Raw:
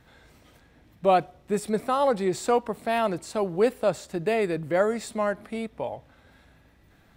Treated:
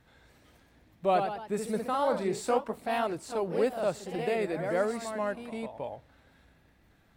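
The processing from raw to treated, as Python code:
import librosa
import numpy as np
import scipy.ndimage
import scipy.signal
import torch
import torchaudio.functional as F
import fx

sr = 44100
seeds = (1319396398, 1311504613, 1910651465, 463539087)

y = fx.echo_pitch(x, sr, ms=156, semitones=1, count=3, db_per_echo=-6.0)
y = F.gain(torch.from_numpy(y), -6.0).numpy()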